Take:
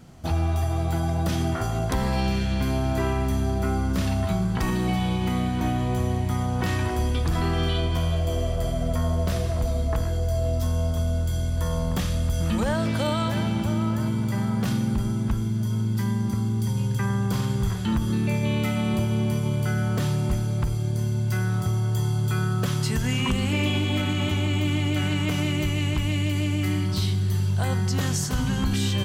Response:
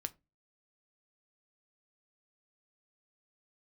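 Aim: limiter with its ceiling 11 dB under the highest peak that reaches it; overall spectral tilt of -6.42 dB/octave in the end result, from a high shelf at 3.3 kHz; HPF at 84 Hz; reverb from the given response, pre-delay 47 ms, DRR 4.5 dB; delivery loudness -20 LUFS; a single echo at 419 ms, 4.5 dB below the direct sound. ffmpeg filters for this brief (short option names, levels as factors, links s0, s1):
-filter_complex "[0:a]highpass=84,highshelf=f=3300:g=-4.5,alimiter=limit=0.0631:level=0:latency=1,aecho=1:1:419:0.596,asplit=2[s0][s1];[1:a]atrim=start_sample=2205,adelay=47[s2];[s1][s2]afir=irnorm=-1:irlink=0,volume=0.708[s3];[s0][s3]amix=inputs=2:normalize=0,volume=2.82"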